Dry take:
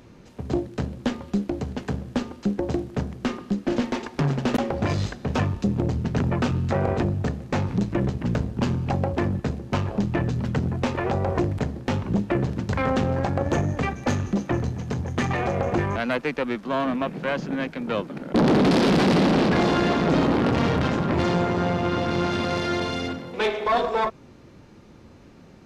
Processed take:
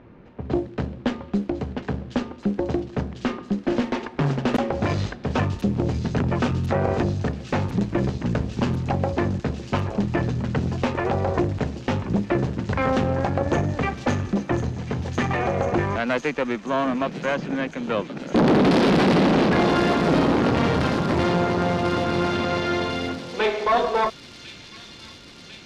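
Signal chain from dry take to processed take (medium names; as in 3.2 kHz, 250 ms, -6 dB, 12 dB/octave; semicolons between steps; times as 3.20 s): level-controlled noise filter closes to 2.1 kHz, open at -17 dBFS; tone controls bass -2 dB, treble -5 dB; on a send: feedback echo behind a high-pass 1047 ms, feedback 79%, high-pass 4.8 kHz, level -3 dB; on the sum: trim +2 dB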